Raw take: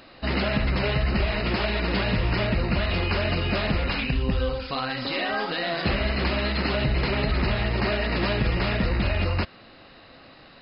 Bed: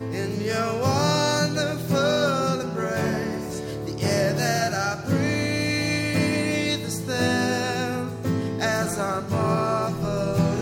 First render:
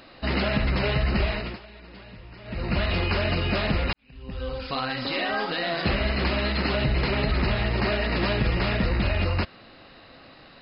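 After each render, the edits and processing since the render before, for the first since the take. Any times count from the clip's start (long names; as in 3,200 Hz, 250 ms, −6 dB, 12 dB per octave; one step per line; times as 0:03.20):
0:01.26–0:02.78: duck −20.5 dB, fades 0.34 s
0:03.93–0:04.67: fade in quadratic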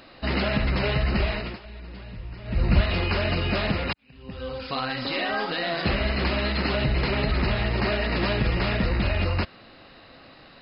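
0:01.65–0:02.81: low-shelf EQ 140 Hz +11 dB
0:03.72–0:04.77: high-pass filter 80 Hz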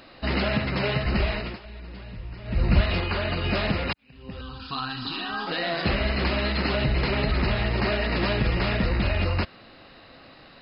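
0:00.56–0:01.06: high-pass filter 82 Hz 24 dB per octave
0:03.00–0:03.44: Chebyshev low-pass with heavy ripple 4,800 Hz, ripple 3 dB
0:04.41–0:05.47: phaser with its sweep stopped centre 2,100 Hz, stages 6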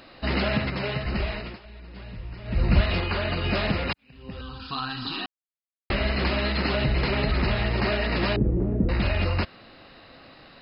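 0:00.70–0:01.96: clip gain −3.5 dB
0:05.26–0:05.90: silence
0:08.36–0:08.89: low-pass with resonance 340 Hz, resonance Q 1.9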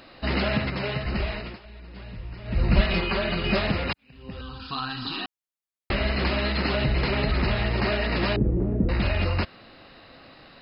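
0:02.76–0:03.59: comb filter 5.2 ms, depth 69%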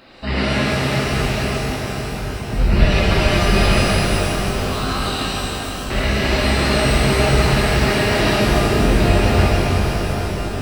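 on a send: feedback echo with a low-pass in the loop 436 ms, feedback 78%, low-pass 2,000 Hz, level −9 dB
on the sum: reverb with rising layers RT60 3.6 s, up +12 semitones, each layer −8 dB, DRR −7 dB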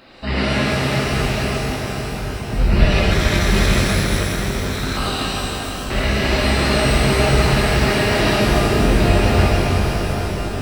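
0:03.11–0:04.97: lower of the sound and its delayed copy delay 0.53 ms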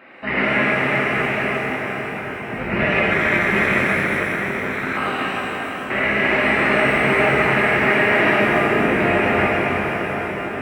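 high-pass filter 210 Hz 12 dB per octave
high shelf with overshoot 3,100 Hz −13 dB, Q 3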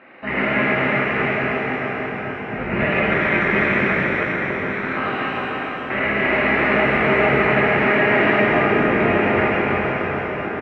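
high-frequency loss of the air 200 metres
single-tap delay 299 ms −6.5 dB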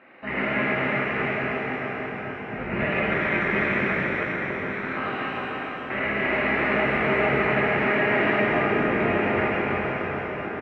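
level −5.5 dB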